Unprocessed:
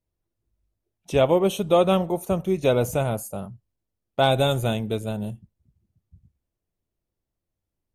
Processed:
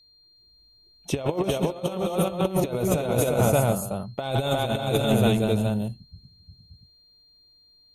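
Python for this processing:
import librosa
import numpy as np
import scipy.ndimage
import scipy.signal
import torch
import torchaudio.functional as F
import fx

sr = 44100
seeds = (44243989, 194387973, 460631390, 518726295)

y = fx.echo_multitap(x, sr, ms=(125, 265, 353, 491, 577), db=(-15.5, -14.0, -3.5, -12.5, -4.5))
y = fx.over_compress(y, sr, threshold_db=-24.0, ratio=-0.5)
y = y + 10.0 ** (-57.0 / 20.0) * np.sin(2.0 * np.pi * 4200.0 * np.arange(len(y)) / sr)
y = y * 10.0 ** (1.5 / 20.0)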